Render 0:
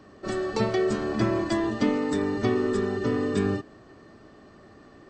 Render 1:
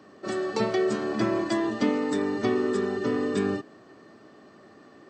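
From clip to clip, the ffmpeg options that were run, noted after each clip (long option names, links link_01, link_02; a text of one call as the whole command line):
ffmpeg -i in.wav -af "highpass=170" out.wav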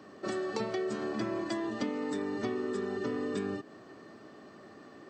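ffmpeg -i in.wav -af "acompressor=threshold=-32dB:ratio=4" out.wav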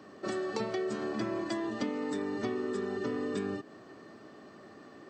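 ffmpeg -i in.wav -af anull out.wav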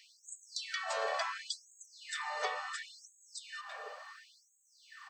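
ffmpeg -i in.wav -filter_complex "[0:a]asubboost=boost=6:cutoff=140,asplit=2[link_01][link_02];[link_02]adelay=340,highpass=300,lowpass=3400,asoftclip=type=hard:threshold=-28.5dB,volume=-8dB[link_03];[link_01][link_03]amix=inputs=2:normalize=0,afftfilt=real='re*gte(b*sr/1024,430*pow(6500/430,0.5+0.5*sin(2*PI*0.71*pts/sr)))':imag='im*gte(b*sr/1024,430*pow(6500/430,0.5+0.5*sin(2*PI*0.71*pts/sr)))':win_size=1024:overlap=0.75,volume=7dB" out.wav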